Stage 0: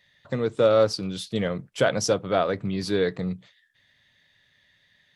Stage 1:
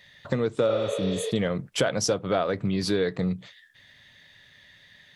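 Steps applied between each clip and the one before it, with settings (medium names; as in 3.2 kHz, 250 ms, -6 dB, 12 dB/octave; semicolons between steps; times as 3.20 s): compression 3:1, threshold -34 dBFS, peak gain reduction 14.5 dB; spectral replace 0.71–1.28 s, 390–6100 Hz both; trim +9 dB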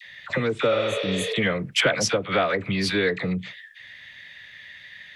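peaking EQ 2.2 kHz +13.5 dB 1.4 oct; phase dispersion lows, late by 54 ms, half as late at 900 Hz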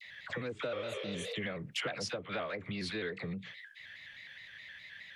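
compression 2:1, threshold -35 dBFS, peak gain reduction 10.5 dB; vibrato with a chosen wave square 4.8 Hz, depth 100 cents; trim -6.5 dB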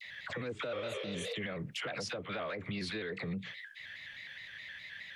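peak limiter -33 dBFS, peak gain reduction 8.5 dB; trim +3 dB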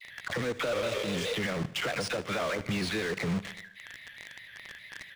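in parallel at -6 dB: companded quantiser 2-bit; on the sum: feedback delay 76 ms, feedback 58%, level -18 dB; decimation joined by straight lines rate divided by 3×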